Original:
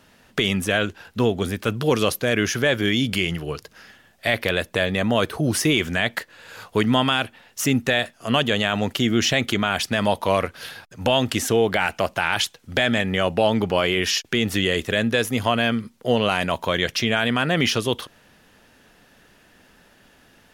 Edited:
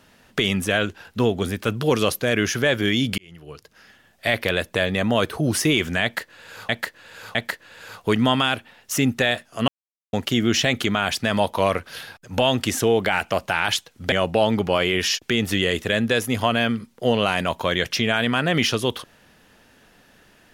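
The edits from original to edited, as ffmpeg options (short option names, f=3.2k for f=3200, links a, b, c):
-filter_complex "[0:a]asplit=7[a][b][c][d][e][f][g];[a]atrim=end=3.18,asetpts=PTS-STARTPTS,afade=t=out:st=3.176:d=0.004:c=hsin[h];[b]atrim=start=3.18:end=6.692,asetpts=PTS-STARTPTS,afade=t=in:d=1.09[i];[c]atrim=start=6.028:end=6.692[j];[d]atrim=start=6.028:end=8.36,asetpts=PTS-STARTPTS,afade=t=out:st=2.328:d=0.004:c=hsin[k];[e]atrim=start=8.36:end=8.81,asetpts=PTS-STARTPTS,volume=0[l];[f]atrim=start=8.81:end=12.802,asetpts=PTS-STARTPTS,afade=t=in:d=0.004:c=hsin[m];[g]atrim=start=13.148[n];[h][i]concat=n=2:v=0:a=1[o];[o][j]acrossfade=d=0.004:c1=hsin:c2=hsin[p];[k][l][m]concat=n=3:v=0:a=1[q];[p][q]acrossfade=d=0.004:c1=hsin:c2=hsin[r];[r][n]acrossfade=d=0.004:c1=hsin:c2=hsin"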